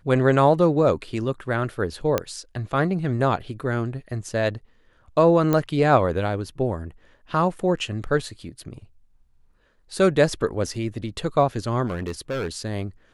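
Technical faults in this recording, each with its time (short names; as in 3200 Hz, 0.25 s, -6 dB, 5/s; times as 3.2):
2.18 pop -7 dBFS
5.53 pop -9 dBFS
11.86–12.57 clipped -23.5 dBFS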